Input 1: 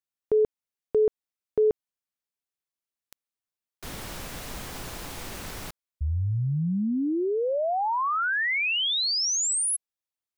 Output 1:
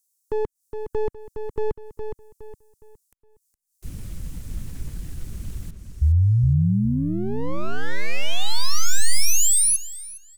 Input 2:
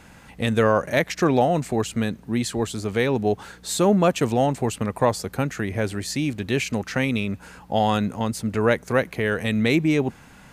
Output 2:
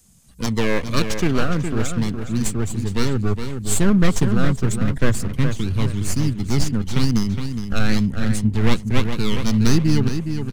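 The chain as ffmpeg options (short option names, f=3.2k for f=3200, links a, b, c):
-filter_complex "[0:a]afftdn=nr=16:nf=-35,equalizer=f=6.9k:t=o:w=2.7:g=9,asplit=2[a][b];[b]adelay=414,lowpass=f=2.3k:p=1,volume=-7dB,asplit=2[c][d];[d]adelay=414,lowpass=f=2.3k:p=1,volume=0.34,asplit=2[e][f];[f]adelay=414,lowpass=f=2.3k:p=1,volume=0.34,asplit=2[g][h];[h]adelay=414,lowpass=f=2.3k:p=1,volume=0.34[i];[a][c][e][g][i]amix=inputs=5:normalize=0,acrossover=split=150|510|6100[j][k][l][m];[l]aeval=exprs='abs(val(0))':c=same[n];[m]acompressor=mode=upward:threshold=-41dB:ratio=2.5:attack=0.14:release=178:knee=2.83:detection=peak[o];[j][k][n][o]amix=inputs=4:normalize=0,asubboost=boost=3.5:cutoff=180"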